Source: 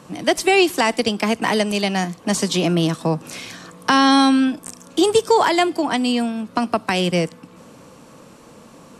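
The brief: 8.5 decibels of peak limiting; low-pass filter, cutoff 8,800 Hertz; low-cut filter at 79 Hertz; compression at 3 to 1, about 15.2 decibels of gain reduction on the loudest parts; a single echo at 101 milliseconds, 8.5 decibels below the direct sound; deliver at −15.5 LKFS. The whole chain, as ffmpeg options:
ffmpeg -i in.wav -af "highpass=79,lowpass=8800,acompressor=threshold=-32dB:ratio=3,alimiter=limit=-23dB:level=0:latency=1,aecho=1:1:101:0.376,volume=17dB" out.wav

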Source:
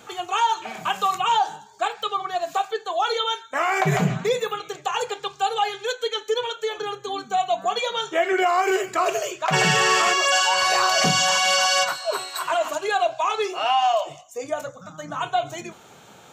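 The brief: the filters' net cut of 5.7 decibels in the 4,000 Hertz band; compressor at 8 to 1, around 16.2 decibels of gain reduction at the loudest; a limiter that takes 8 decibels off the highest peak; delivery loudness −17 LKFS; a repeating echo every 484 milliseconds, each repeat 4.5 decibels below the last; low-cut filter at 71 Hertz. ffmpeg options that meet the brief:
ffmpeg -i in.wav -af "highpass=71,equalizer=frequency=4000:width_type=o:gain=-8.5,acompressor=threshold=-34dB:ratio=8,alimiter=level_in=6.5dB:limit=-24dB:level=0:latency=1,volume=-6.5dB,aecho=1:1:484|968|1452|1936|2420|2904|3388|3872|4356:0.596|0.357|0.214|0.129|0.0772|0.0463|0.0278|0.0167|0.01,volume=21dB" out.wav

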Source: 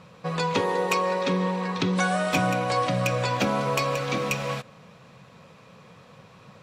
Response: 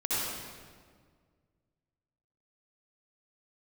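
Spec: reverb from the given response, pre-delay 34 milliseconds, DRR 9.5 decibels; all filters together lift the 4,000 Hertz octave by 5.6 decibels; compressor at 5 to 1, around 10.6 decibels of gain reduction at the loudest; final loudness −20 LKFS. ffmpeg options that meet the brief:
-filter_complex "[0:a]equalizer=frequency=4000:width_type=o:gain=7,acompressor=threshold=-31dB:ratio=5,asplit=2[link_01][link_02];[1:a]atrim=start_sample=2205,adelay=34[link_03];[link_02][link_03]afir=irnorm=-1:irlink=0,volume=-18dB[link_04];[link_01][link_04]amix=inputs=2:normalize=0,volume=12.5dB"

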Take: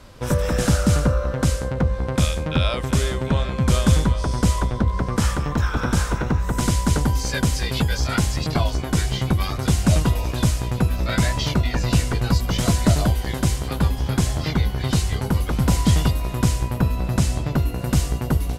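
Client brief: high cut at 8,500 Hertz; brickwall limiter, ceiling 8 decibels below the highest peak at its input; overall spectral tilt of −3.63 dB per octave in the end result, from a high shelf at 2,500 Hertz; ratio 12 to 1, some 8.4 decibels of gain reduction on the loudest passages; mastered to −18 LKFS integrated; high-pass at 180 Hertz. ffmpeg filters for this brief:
ffmpeg -i in.wav -af "highpass=180,lowpass=8500,highshelf=frequency=2500:gain=4.5,acompressor=threshold=-24dB:ratio=12,volume=12.5dB,alimiter=limit=-5.5dB:level=0:latency=1" out.wav

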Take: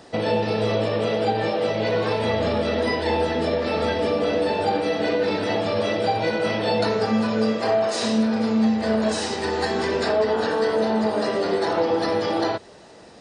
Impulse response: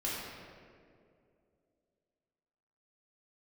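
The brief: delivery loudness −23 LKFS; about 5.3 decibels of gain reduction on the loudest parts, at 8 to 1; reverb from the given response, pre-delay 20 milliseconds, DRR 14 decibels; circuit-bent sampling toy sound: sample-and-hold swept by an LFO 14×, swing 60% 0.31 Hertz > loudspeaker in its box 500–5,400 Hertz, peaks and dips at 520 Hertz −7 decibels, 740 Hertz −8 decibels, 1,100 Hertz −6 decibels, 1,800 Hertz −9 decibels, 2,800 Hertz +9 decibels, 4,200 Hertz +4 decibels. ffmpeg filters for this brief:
-filter_complex "[0:a]acompressor=threshold=-22dB:ratio=8,asplit=2[link_01][link_02];[1:a]atrim=start_sample=2205,adelay=20[link_03];[link_02][link_03]afir=irnorm=-1:irlink=0,volume=-19dB[link_04];[link_01][link_04]amix=inputs=2:normalize=0,acrusher=samples=14:mix=1:aa=0.000001:lfo=1:lforange=8.4:lforate=0.31,highpass=500,equalizer=frequency=520:width_type=q:width=4:gain=-7,equalizer=frequency=740:width_type=q:width=4:gain=-8,equalizer=frequency=1100:width_type=q:width=4:gain=-6,equalizer=frequency=1800:width_type=q:width=4:gain=-9,equalizer=frequency=2800:width_type=q:width=4:gain=9,equalizer=frequency=4200:width_type=q:width=4:gain=4,lowpass=frequency=5400:width=0.5412,lowpass=frequency=5400:width=1.3066,volume=7.5dB"

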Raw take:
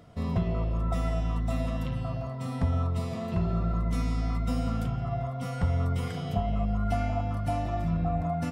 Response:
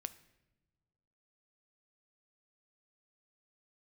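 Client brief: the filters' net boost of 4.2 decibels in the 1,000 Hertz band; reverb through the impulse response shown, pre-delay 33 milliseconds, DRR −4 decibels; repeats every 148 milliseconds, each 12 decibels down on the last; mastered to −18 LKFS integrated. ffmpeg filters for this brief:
-filter_complex "[0:a]equalizer=frequency=1000:width_type=o:gain=7,aecho=1:1:148|296|444:0.251|0.0628|0.0157,asplit=2[link_01][link_02];[1:a]atrim=start_sample=2205,adelay=33[link_03];[link_02][link_03]afir=irnorm=-1:irlink=0,volume=7dB[link_04];[link_01][link_04]amix=inputs=2:normalize=0,volume=6.5dB"

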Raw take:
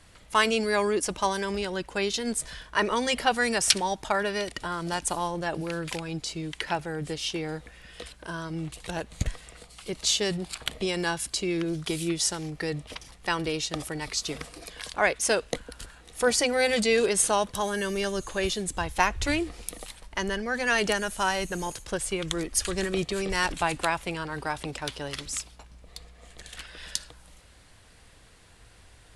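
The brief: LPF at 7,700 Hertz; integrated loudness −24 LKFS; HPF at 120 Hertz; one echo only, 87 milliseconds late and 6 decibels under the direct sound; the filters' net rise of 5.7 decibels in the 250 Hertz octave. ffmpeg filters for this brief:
ffmpeg -i in.wav -af "highpass=120,lowpass=7700,equalizer=frequency=250:width_type=o:gain=8.5,aecho=1:1:87:0.501,volume=2dB" out.wav

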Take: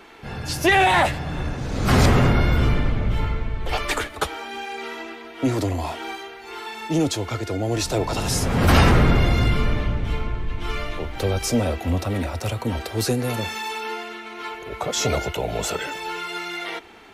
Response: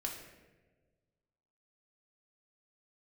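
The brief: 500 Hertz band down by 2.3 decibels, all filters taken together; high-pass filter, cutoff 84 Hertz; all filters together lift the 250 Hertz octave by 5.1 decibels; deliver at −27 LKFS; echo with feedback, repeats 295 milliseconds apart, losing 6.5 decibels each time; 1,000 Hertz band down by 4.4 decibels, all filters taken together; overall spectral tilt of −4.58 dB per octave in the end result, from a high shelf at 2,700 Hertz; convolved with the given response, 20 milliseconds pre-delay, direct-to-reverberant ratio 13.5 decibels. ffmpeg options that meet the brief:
-filter_complex "[0:a]highpass=84,equalizer=frequency=250:width_type=o:gain=8,equalizer=frequency=500:width_type=o:gain=-5,equalizer=frequency=1000:width_type=o:gain=-5.5,highshelf=frequency=2700:gain=4.5,aecho=1:1:295|590|885|1180|1475|1770:0.473|0.222|0.105|0.0491|0.0231|0.0109,asplit=2[link_01][link_02];[1:a]atrim=start_sample=2205,adelay=20[link_03];[link_02][link_03]afir=irnorm=-1:irlink=0,volume=-14dB[link_04];[link_01][link_04]amix=inputs=2:normalize=0,volume=-6dB"

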